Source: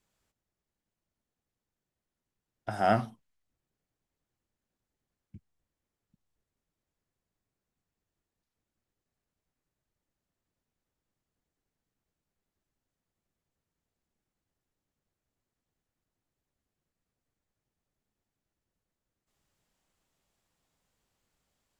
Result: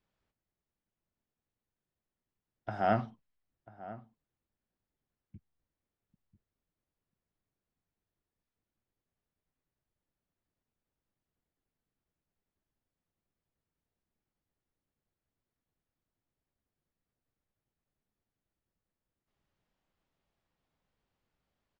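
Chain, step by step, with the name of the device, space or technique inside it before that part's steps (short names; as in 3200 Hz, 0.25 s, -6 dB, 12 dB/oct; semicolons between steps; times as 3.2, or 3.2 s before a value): shout across a valley (air absorption 180 m; outdoor echo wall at 170 m, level -16 dB); gain -2.5 dB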